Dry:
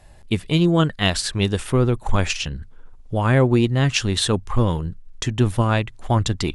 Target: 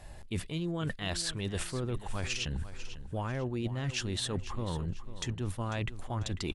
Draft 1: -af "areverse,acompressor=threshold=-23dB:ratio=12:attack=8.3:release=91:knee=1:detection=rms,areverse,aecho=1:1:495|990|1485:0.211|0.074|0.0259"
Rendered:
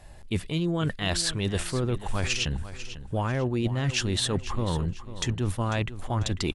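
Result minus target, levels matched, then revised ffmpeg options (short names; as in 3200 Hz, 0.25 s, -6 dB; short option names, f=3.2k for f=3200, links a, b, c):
compressor: peak gain reduction -7.5 dB
-af "areverse,acompressor=threshold=-31dB:ratio=12:attack=8.3:release=91:knee=1:detection=rms,areverse,aecho=1:1:495|990|1485:0.211|0.074|0.0259"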